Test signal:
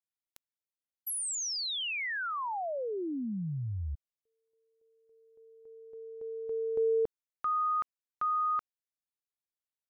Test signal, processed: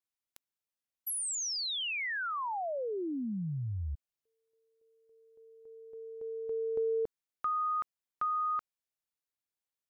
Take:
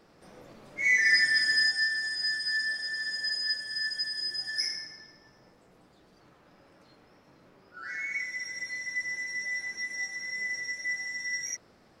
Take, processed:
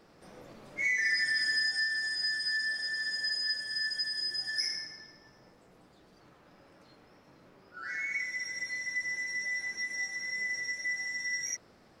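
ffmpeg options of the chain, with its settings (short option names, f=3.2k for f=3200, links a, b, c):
-af "acompressor=threshold=-32dB:ratio=5:attack=77:release=76:knee=6:detection=peak"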